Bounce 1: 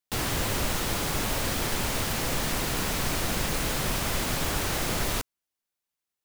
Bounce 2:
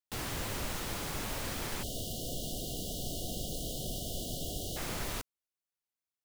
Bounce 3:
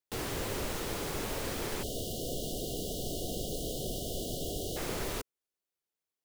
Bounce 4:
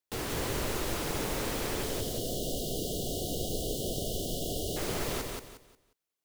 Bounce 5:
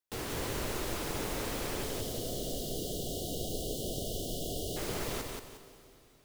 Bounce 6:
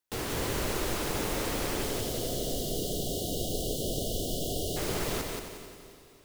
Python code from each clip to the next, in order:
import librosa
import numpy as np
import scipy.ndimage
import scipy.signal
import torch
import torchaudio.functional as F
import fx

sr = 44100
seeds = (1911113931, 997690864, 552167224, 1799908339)

y1 = fx.spec_erase(x, sr, start_s=1.83, length_s=2.94, low_hz=770.0, high_hz=2800.0)
y1 = F.gain(torch.from_numpy(y1), -9.0).numpy()
y2 = fx.peak_eq(y1, sr, hz=420.0, db=8.0, octaves=0.88)
y3 = fx.echo_feedback(y2, sr, ms=179, feedback_pct=29, wet_db=-3.5)
y3 = F.gain(torch.from_numpy(y3), 1.0).numpy()
y4 = fx.rev_plate(y3, sr, seeds[0], rt60_s=3.8, hf_ratio=1.0, predelay_ms=0, drr_db=13.0)
y4 = F.gain(torch.from_numpy(y4), -3.0).numpy()
y5 = fx.echo_feedback(y4, sr, ms=267, feedback_pct=38, wet_db=-12.0)
y5 = F.gain(torch.from_numpy(y5), 4.0).numpy()